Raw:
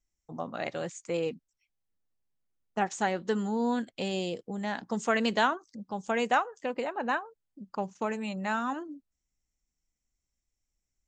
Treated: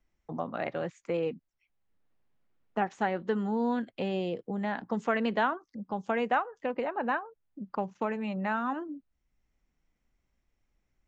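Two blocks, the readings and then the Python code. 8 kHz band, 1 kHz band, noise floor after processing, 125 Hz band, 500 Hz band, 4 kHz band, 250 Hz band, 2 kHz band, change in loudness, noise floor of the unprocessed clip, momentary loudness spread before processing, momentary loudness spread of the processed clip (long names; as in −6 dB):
below −15 dB, −0.5 dB, −80 dBFS, +1.0 dB, 0.0 dB, −7.0 dB, +0.5 dB, −2.0 dB, −0.5 dB, −85 dBFS, 13 LU, 10 LU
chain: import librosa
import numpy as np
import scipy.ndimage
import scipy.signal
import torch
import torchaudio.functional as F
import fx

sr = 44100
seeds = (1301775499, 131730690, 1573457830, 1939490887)

y = scipy.signal.sosfilt(scipy.signal.butter(2, 2400.0, 'lowpass', fs=sr, output='sos'), x)
y = fx.band_squash(y, sr, depth_pct=40)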